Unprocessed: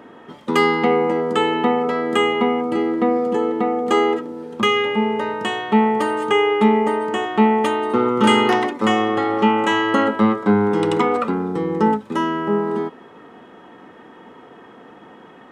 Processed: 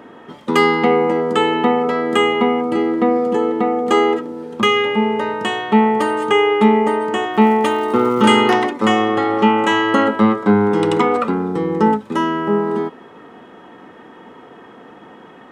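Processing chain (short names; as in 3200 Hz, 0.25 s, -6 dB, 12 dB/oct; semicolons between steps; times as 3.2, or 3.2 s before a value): 7.31–8.21 crackle 96/s -> 450/s -33 dBFS; gain +2.5 dB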